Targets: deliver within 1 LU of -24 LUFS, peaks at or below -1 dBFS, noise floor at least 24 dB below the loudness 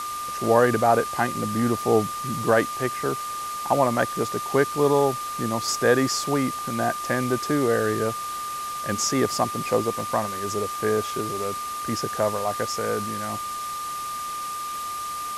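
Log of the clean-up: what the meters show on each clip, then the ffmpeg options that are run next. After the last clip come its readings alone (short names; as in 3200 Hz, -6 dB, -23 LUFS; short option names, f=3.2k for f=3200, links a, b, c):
steady tone 1200 Hz; tone level -29 dBFS; noise floor -31 dBFS; noise floor target -49 dBFS; loudness -24.5 LUFS; peak -4.5 dBFS; loudness target -24.0 LUFS
-> -af "bandreject=f=1.2k:w=30"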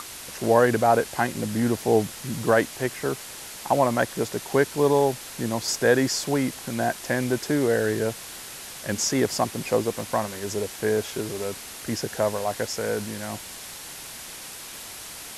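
steady tone none; noise floor -40 dBFS; noise floor target -49 dBFS
-> -af "afftdn=nr=9:nf=-40"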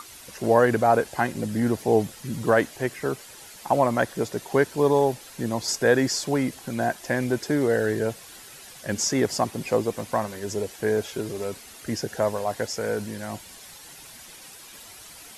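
noise floor -45 dBFS; noise floor target -49 dBFS
-> -af "afftdn=nr=6:nf=-45"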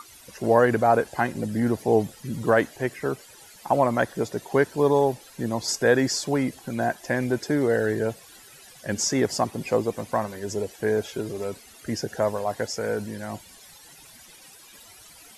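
noise floor -49 dBFS; loudness -25.0 LUFS; peak -5.0 dBFS; loudness target -24.0 LUFS
-> -af "volume=1dB"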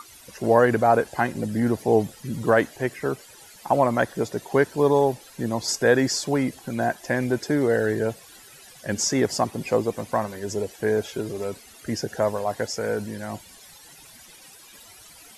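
loudness -24.0 LUFS; peak -4.0 dBFS; noise floor -48 dBFS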